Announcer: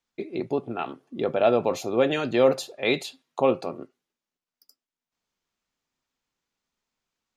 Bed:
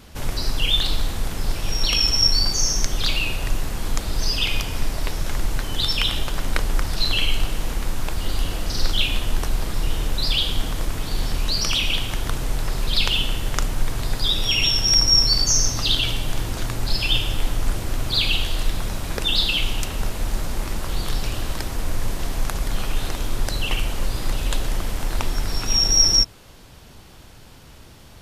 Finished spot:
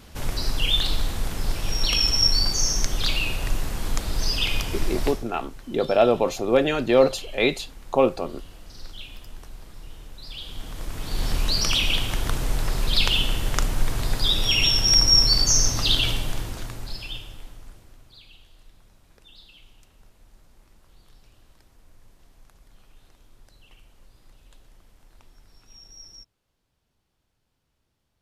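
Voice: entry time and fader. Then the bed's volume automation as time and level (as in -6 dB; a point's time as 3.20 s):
4.55 s, +2.5 dB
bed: 5.09 s -2 dB
5.29 s -19 dB
10.22 s -19 dB
11.30 s -0.5 dB
16.10 s -0.5 dB
18.23 s -30 dB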